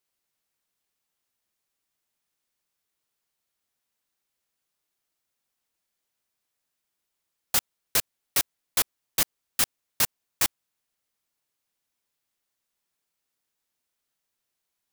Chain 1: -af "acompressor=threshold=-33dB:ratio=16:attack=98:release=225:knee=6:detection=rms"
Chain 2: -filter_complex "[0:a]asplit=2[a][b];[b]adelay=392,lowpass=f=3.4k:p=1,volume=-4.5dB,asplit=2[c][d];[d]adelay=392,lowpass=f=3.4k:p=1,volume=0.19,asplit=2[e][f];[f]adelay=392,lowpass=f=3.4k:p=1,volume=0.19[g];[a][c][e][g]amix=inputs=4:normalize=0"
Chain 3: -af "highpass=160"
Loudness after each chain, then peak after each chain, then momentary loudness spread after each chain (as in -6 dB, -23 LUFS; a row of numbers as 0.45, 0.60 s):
-35.0, -26.5, -26.5 LUFS; -11.0, -8.0, -9.0 dBFS; 0, 5, 1 LU